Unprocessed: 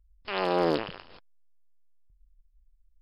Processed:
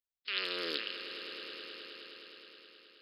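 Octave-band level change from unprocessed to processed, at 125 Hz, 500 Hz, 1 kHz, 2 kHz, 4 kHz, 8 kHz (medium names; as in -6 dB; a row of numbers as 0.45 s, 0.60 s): -24.5 dB, -14.5 dB, -16.5 dB, -1.0 dB, +4.5 dB, no reading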